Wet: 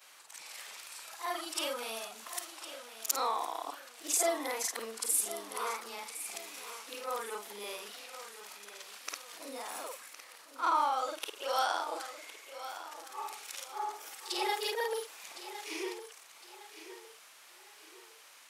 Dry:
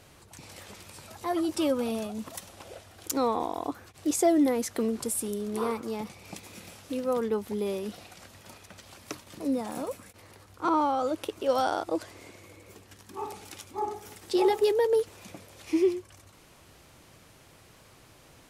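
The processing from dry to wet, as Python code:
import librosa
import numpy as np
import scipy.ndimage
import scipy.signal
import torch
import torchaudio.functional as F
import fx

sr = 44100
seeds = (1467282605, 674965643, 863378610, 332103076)

p1 = fx.frame_reverse(x, sr, frame_ms=107.0)
p2 = scipy.signal.sosfilt(scipy.signal.butter(2, 1100.0, 'highpass', fs=sr, output='sos'), p1)
p3 = p2 + fx.echo_feedback(p2, sr, ms=1060, feedback_pct=37, wet_db=-12.5, dry=0)
y = p3 * 10.0 ** (5.5 / 20.0)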